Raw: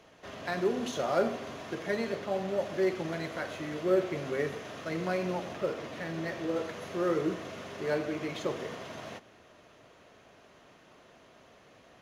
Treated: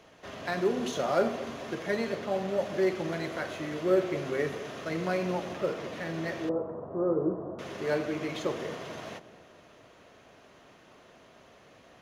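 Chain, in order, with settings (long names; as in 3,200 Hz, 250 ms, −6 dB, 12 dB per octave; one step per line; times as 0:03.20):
0:06.49–0:07.59: inverse Chebyshev low-pass filter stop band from 2,100 Hz, stop band 40 dB
delay with a low-pass on its return 218 ms, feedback 49%, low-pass 780 Hz, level −14 dB
level +1.5 dB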